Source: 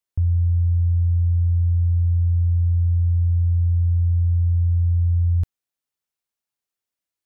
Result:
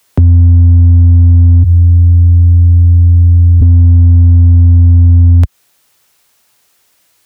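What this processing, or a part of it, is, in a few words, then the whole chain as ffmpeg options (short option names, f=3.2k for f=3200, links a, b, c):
mastering chain: -filter_complex "[0:a]asplit=3[a][b][c];[a]afade=t=out:st=1.62:d=0.02[d];[b]highpass=180,afade=t=in:st=1.62:d=0.02,afade=t=out:st=3.6:d=0.02[e];[c]afade=t=in:st=3.6:d=0.02[f];[d][e][f]amix=inputs=3:normalize=0,highpass=57,equalizer=f=240:t=o:w=1.6:g=-3.5,acrossover=split=97|200[g][h][i];[g]acompressor=threshold=-34dB:ratio=4[j];[h]acompressor=threshold=-35dB:ratio=4[k];[i]acompressor=threshold=-50dB:ratio=4[l];[j][k][l]amix=inputs=3:normalize=0,acompressor=threshold=-31dB:ratio=2,asoftclip=type=tanh:threshold=-29.5dB,asoftclip=type=hard:threshold=-31.5dB,alimiter=level_in=34.5dB:limit=-1dB:release=50:level=0:latency=1,volume=-1dB"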